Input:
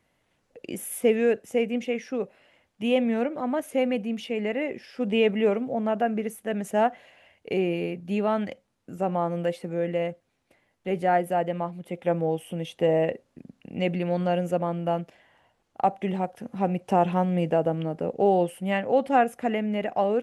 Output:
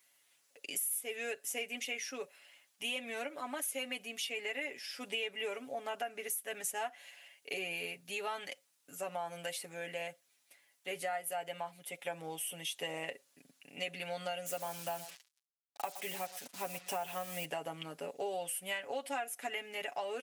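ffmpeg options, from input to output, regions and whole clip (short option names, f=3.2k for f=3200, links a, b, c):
-filter_complex "[0:a]asettb=1/sr,asplit=3[a][b][c];[a]atrim=end=14.464[d];[b]atrim=start=14.46:end=17.45,asetpts=PTS-STARTPTS,afade=t=in:d=0.004:c=qsin,afade=t=out:st=2.986:d=0.004:c=qsin,lowpass=9.8k,aecho=1:1:118:0.133,atrim=end_sample=131859,acrusher=bits=7:mix=0:aa=0.5[e];[c]atrim=start=17.446[f];[d][e]acrossfade=d=0.004:c1=hsin:c2=qsin[g];[g][f]acrossfade=d=0.004:c1=qsin:c2=hsin,aderivative,aecho=1:1:7.1:0.74,acompressor=threshold=-43dB:ratio=6,volume=8.5dB"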